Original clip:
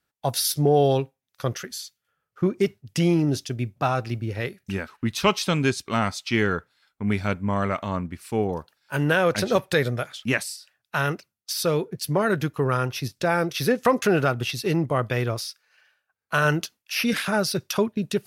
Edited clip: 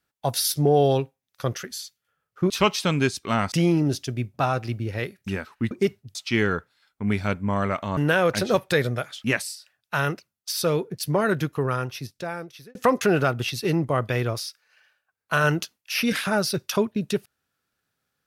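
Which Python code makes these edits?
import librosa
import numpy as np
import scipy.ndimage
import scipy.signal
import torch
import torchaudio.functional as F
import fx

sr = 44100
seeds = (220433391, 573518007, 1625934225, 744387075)

y = fx.edit(x, sr, fx.swap(start_s=2.5, length_s=0.44, other_s=5.13, other_length_s=1.02),
    fx.cut(start_s=7.97, length_s=1.01),
    fx.fade_out_span(start_s=12.42, length_s=1.34), tone=tone)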